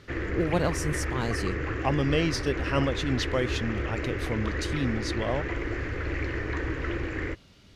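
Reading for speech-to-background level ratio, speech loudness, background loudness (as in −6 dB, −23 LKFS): 1.5 dB, −30.5 LKFS, −32.0 LKFS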